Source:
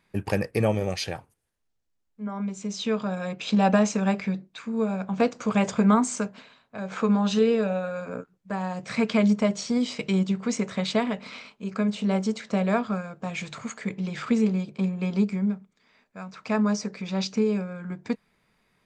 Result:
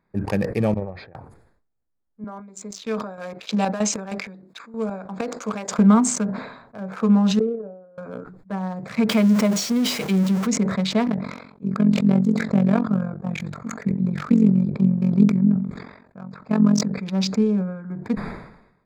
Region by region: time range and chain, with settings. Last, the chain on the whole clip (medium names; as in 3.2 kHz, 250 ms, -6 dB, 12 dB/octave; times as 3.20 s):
0.74–1.15 s: gate -26 dBFS, range -25 dB + distance through air 360 m
2.24–5.79 s: high-pass 280 Hz + treble shelf 3.2 kHz +9 dB + square tremolo 3.2 Hz, depth 65%
7.39–7.98 s: band-pass filter 370 Hz, Q 2.2 + gate -26 dBFS, range -12 dB
9.09–10.47 s: jump at every zero crossing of -27.5 dBFS + high-pass 210 Hz 6 dB/octave
11.07–16.98 s: high-pass 56 Hz + bass shelf 180 Hz +11 dB + AM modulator 45 Hz, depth 70%
whole clip: local Wiener filter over 15 samples; dynamic bell 200 Hz, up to +6 dB, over -34 dBFS, Q 1.7; decay stretcher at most 70 dB/s